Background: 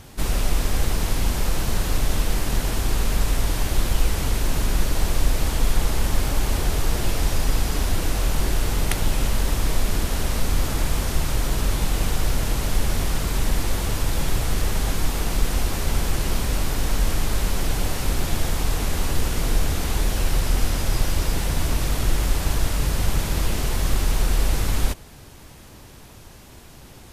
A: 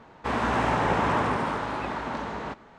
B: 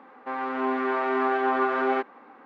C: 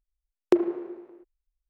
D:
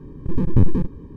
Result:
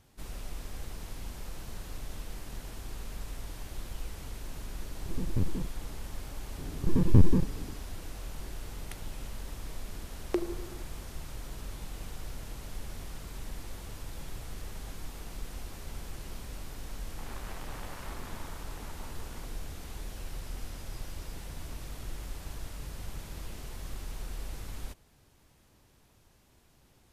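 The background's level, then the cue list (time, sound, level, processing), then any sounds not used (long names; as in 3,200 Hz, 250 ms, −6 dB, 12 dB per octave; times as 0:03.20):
background −19 dB
0:04.80: mix in D −14.5 dB
0:06.58: mix in D −4 dB
0:09.82: mix in C −8 dB + tilt shelving filter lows −3 dB
0:16.93: mix in A −17 dB + saturating transformer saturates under 2,000 Hz
not used: B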